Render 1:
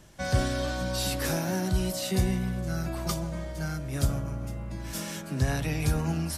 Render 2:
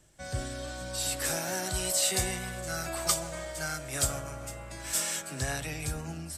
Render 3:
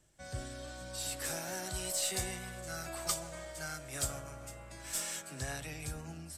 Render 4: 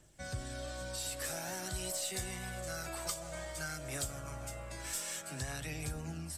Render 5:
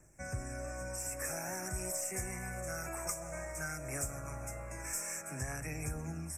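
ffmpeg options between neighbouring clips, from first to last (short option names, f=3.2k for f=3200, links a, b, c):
-filter_complex "[0:a]equalizer=f=200:t=o:w=0.33:g=-7,equalizer=f=1k:t=o:w=0.33:g=-5,equalizer=f=8k:t=o:w=0.33:g=11,acrossover=split=540[a][b];[b]dynaudnorm=f=310:g=9:m=16dB[c];[a][c]amix=inputs=2:normalize=0,volume=-9dB"
-af "aeval=exprs='0.282*(cos(1*acos(clip(val(0)/0.282,-1,1)))-cos(1*PI/2))+0.00562*(cos(6*acos(clip(val(0)/0.282,-1,1)))-cos(6*PI/2))':c=same,volume=-7dB"
-af "acompressor=threshold=-44dB:ratio=2.5,aphaser=in_gain=1:out_gain=1:delay=2.3:decay=0.25:speed=0.51:type=triangular,volume=4.5dB"
-af "asuperstop=centerf=3700:order=12:qfactor=1.3,volume=1dB"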